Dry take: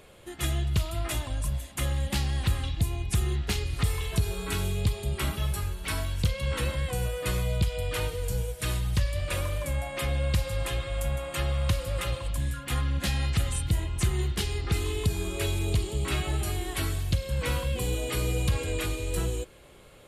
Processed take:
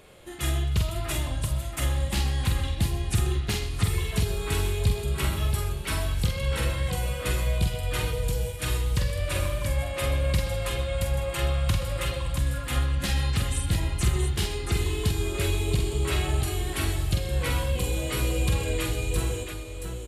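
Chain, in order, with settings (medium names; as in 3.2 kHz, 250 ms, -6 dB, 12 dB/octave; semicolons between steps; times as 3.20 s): multi-tap echo 46/126/678 ms -4.5/-13.5/-6 dB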